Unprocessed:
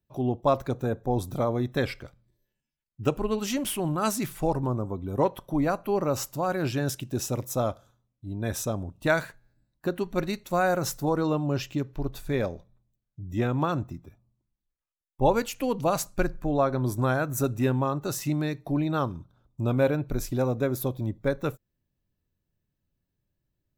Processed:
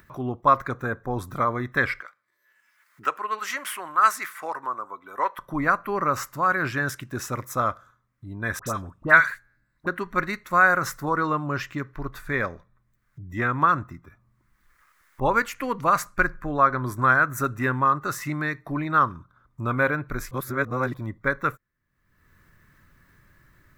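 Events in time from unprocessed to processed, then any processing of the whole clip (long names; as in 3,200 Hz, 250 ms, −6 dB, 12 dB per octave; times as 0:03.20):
0:02.01–0:05.39: high-pass filter 660 Hz
0:08.59–0:09.87: all-pass dispersion highs, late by 77 ms, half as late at 1,800 Hz
0:20.31–0:20.94: reverse
whole clip: flat-topped bell 1,500 Hz +16 dB 1.3 octaves; upward compression, threshold −35 dBFS; level −2.5 dB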